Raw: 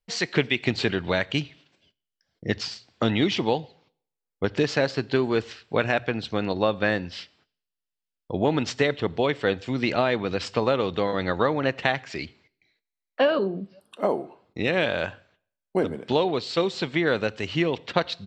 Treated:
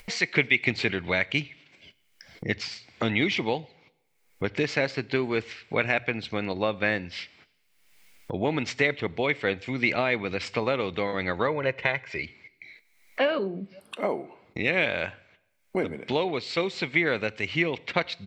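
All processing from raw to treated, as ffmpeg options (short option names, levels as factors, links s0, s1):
-filter_complex "[0:a]asettb=1/sr,asplit=3[s0][s1][s2];[s0]atrim=end=11.474[s3];[s1]atrim=start=11.47:end=12.24,asetpts=PTS-STARTPTS,afade=t=in:d=0.004:c=qsin,afade=t=out:st=0.766:d=0.004:c=qsin,highshelf=f=3400:g=-10,aecho=1:1:2:0.56,atrim=end_sample=33957[s4];[s2]atrim=start=12.236[s5];[s3][s4]acrossfade=d=0.004:c1=hsin:c2=qsin[s6];[s6][s5]acrossfade=d=0.004:c1=qsin:c2=hsin,equalizer=f=2200:t=o:w=0.36:g=13,acompressor=mode=upward:threshold=0.0631:ratio=2.5,volume=0.631"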